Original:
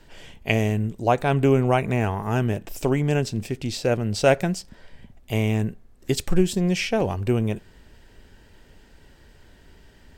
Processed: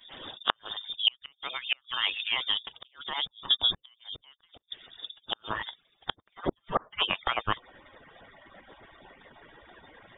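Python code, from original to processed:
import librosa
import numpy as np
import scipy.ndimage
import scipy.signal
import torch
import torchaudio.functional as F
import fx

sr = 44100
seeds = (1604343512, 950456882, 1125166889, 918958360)

y = fx.hpss_only(x, sr, part='percussive')
y = fx.high_shelf(y, sr, hz=2100.0, db=11.5)
y = fx.gate_flip(y, sr, shuts_db=-12.0, range_db=-39)
y = fx.rider(y, sr, range_db=3, speed_s=2.0)
y = fx.tilt_shelf(y, sr, db=fx.steps((0.0, 5.0), (5.49, -6.0), (6.58, -10.0)), hz=860.0)
y = fx.freq_invert(y, sr, carrier_hz=3600)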